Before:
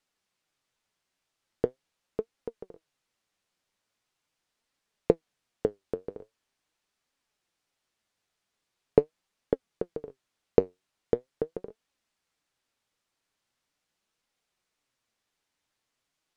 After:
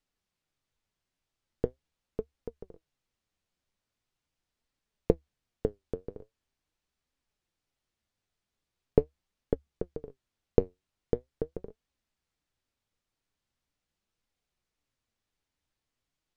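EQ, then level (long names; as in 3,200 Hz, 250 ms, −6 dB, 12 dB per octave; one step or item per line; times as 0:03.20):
spectral tilt −3.5 dB per octave
parametric band 71 Hz +6 dB 0.31 octaves
high-shelf EQ 2,300 Hz +12 dB
−8.0 dB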